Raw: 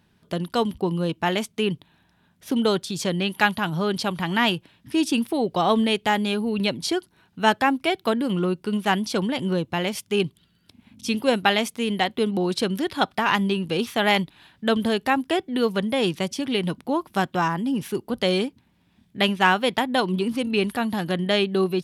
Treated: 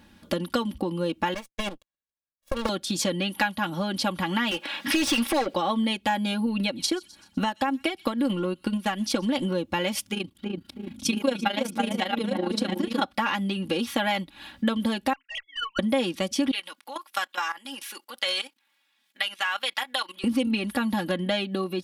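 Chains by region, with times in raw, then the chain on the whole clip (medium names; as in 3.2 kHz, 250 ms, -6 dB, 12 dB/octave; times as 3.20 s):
1.34–2.69 s: comb filter that takes the minimum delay 1.8 ms + power-law waveshaper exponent 2
4.51–5.54 s: high-pass 520 Hz 6 dB/octave + overdrive pedal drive 28 dB, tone 3.1 kHz, clips at -14 dBFS
6.46–9.45 s: transient shaper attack +8 dB, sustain -7 dB + compression 2:1, threshold -27 dBFS + feedback echo behind a high-pass 126 ms, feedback 43%, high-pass 4.1 kHz, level -19 dB
10.10–13.02 s: chunks repeated in reverse 567 ms, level -8 dB + filtered feedback delay 326 ms, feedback 25%, low-pass 870 Hz, level -4 dB + AM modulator 27 Hz, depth 60%
15.13–15.79 s: formants replaced by sine waves + high-pass 1.5 kHz 24 dB/octave + valve stage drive 30 dB, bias 0.25
16.51–20.24 s: high-pass 1.3 kHz + level held to a coarse grid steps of 16 dB
whole clip: compression 10:1, threshold -32 dBFS; comb 3.6 ms, depth 86%; trim +7 dB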